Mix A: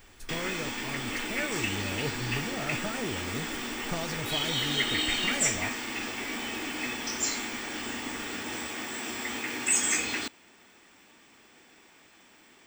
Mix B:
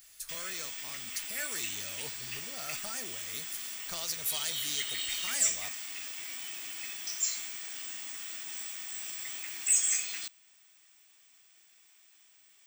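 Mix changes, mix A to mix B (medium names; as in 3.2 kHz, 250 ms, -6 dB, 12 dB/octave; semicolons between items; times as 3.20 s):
speech +10.5 dB; master: add pre-emphasis filter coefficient 0.97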